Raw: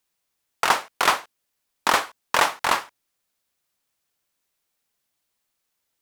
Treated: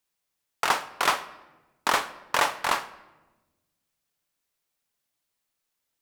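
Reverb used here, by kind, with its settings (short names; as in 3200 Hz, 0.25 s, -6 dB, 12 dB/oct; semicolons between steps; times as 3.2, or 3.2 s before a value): shoebox room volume 630 m³, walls mixed, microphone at 0.33 m; gain -4 dB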